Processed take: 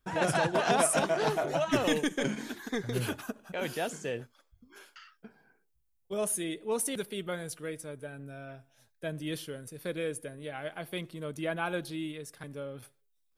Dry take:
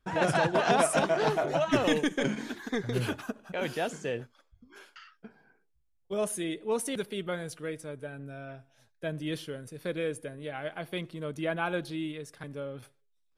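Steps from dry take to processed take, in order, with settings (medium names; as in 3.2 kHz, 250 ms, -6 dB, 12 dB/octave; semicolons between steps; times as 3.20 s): treble shelf 8.8 kHz +12 dB; trim -2 dB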